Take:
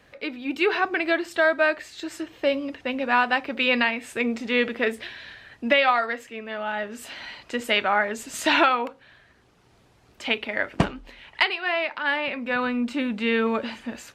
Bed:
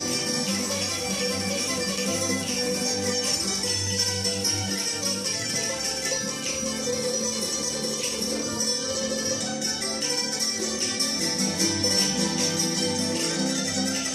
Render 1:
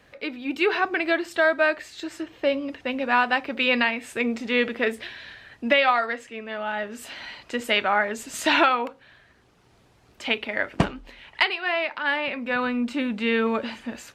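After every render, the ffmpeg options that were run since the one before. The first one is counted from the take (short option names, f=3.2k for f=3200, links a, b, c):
-filter_complex "[0:a]asettb=1/sr,asplit=3[a][b][c];[a]atrim=end=2.074[d];[b]atrim=start=2.07:end=2.69,asetpts=PTS-STARTPTS,afade=t=in:d=0.004:c=qsin,afade=t=out:st=0.616:d=0.004:c=qsin,highshelf=f=5.6k:g=-6[e];[c]atrim=start=2.686[f];[d][e]acrossfade=d=0.004:c1=hsin:c2=qsin[g];[g][f]acrossfade=d=0.004:c1=qsin:c2=hsin,asettb=1/sr,asplit=3[h][i][j];[h]atrim=end=6.114[k];[i]atrim=start=6.11:end=6.75,asetpts=PTS-STARTPTS,afade=t=in:d=0.004:c=qsin,afade=t=out:st=0.636:d=0.004:c=qsin,lowpass=f=11k:w=0.5412,lowpass=f=11k:w=1.3066[l];[j]atrim=start=6.746[m];[k][l]acrossfade=d=0.004:c1=hsin:c2=qsin[n];[n][m]acrossfade=d=0.004:c1=qsin:c2=hsin"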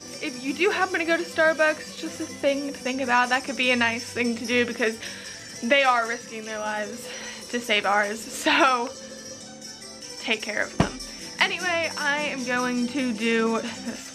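-filter_complex "[1:a]volume=-12.5dB[a];[0:a][a]amix=inputs=2:normalize=0"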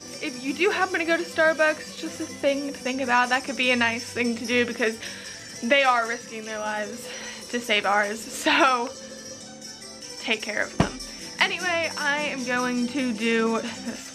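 -af anull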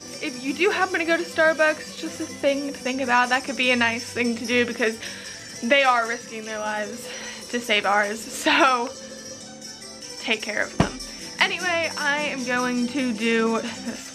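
-af "volume=1.5dB"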